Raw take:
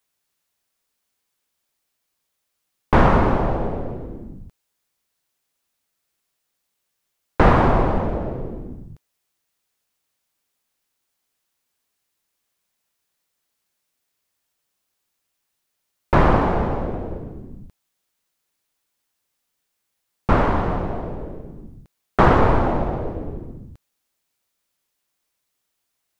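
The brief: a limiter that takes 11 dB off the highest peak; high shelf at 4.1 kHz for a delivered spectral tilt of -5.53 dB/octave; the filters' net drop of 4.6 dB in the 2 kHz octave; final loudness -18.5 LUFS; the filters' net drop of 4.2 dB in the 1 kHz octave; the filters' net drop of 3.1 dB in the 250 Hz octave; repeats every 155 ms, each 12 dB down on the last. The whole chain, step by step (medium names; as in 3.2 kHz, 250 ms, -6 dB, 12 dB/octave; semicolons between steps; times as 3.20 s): peaking EQ 250 Hz -4 dB; peaking EQ 1 kHz -4 dB; peaking EQ 2 kHz -3 dB; treble shelf 4.1 kHz -7.5 dB; peak limiter -15 dBFS; feedback delay 155 ms, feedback 25%, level -12 dB; trim +10 dB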